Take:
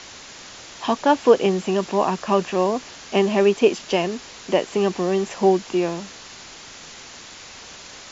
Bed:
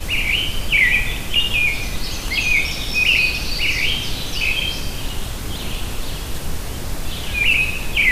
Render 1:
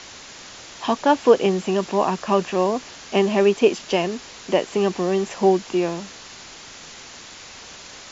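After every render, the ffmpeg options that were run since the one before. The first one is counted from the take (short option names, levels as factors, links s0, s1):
-af anull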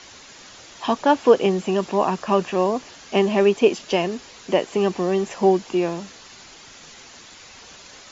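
-af "afftdn=nr=6:nf=-41"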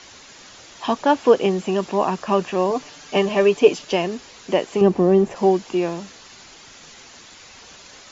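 -filter_complex "[0:a]asettb=1/sr,asplit=3[s0][s1][s2];[s0]atrim=end=2.704[s3];[s1]atrim=start=2.7:end=3.85,asetpts=PTS-STARTPTS,afade=t=in:d=0.004:c=qsin,afade=t=out:st=1.146:d=0.004:c=qsin,aecho=1:1:6.8:0.62,atrim=end_sample=50715[s4];[s2]atrim=start=3.846[s5];[s3][s4]acrossfade=d=0.004:c1=hsin:c2=qsin[s6];[s6][s5]acrossfade=d=0.004:c1=qsin:c2=hsin,asettb=1/sr,asplit=3[s7][s8][s9];[s7]atrim=end=4.814[s10];[s8]atrim=start=4.81:end=5.36,asetpts=PTS-STARTPTS,afade=t=in:d=0.004:c=qsin,afade=t=out:st=0.546:d=0.004:c=qsin,tiltshelf=f=1100:g=8[s11];[s9]atrim=start=5.356[s12];[s10][s11]acrossfade=d=0.004:c1=hsin:c2=qsin[s13];[s13][s12]acrossfade=d=0.004:c1=qsin:c2=hsin"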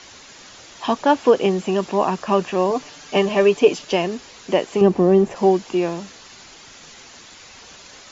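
-af "volume=1.12,alimiter=limit=0.708:level=0:latency=1"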